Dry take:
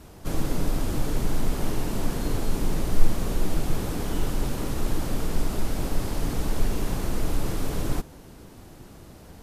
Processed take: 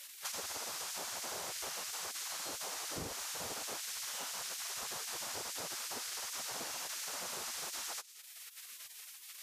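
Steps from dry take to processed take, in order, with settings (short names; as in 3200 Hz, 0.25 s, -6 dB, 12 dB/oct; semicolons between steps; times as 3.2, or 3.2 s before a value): spectral gate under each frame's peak -30 dB weak; dynamic EQ 6100 Hz, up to +8 dB, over -59 dBFS, Q 0.98; compressor 6:1, threshold -51 dBFS, peak gain reduction 19.5 dB; gain +10.5 dB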